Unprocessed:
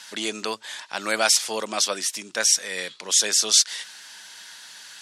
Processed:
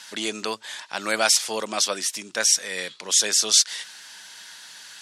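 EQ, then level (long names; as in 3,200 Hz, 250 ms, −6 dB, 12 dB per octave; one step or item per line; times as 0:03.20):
low-shelf EQ 64 Hz +9.5 dB
0.0 dB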